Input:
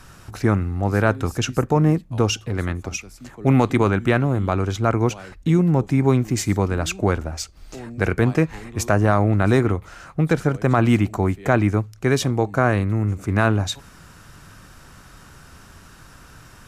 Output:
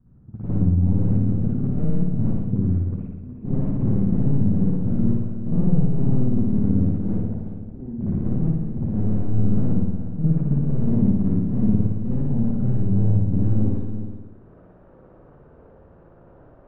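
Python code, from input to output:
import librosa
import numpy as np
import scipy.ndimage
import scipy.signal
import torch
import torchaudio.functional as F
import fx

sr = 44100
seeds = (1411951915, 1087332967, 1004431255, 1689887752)

p1 = fx.low_shelf(x, sr, hz=410.0, db=-8.5)
p2 = fx.leveller(p1, sr, passes=2)
p3 = (np.mod(10.0 ** (14.0 / 20.0) * p2 + 1.0, 2.0) - 1.0) / 10.0 ** (14.0 / 20.0)
p4 = fx.filter_sweep_lowpass(p3, sr, from_hz=200.0, to_hz=520.0, start_s=13.45, end_s=14.55, q=2.5)
p5 = p4 + fx.echo_single(p4, sr, ms=365, db=-11.0, dry=0)
p6 = fx.rev_spring(p5, sr, rt60_s=1.0, pass_ms=(56,), chirp_ms=60, drr_db=-8.0)
y = F.gain(torch.from_numpy(p6), -6.5).numpy()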